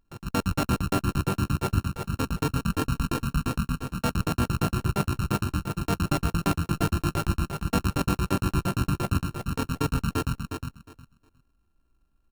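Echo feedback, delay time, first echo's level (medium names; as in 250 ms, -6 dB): 18%, 360 ms, -6.0 dB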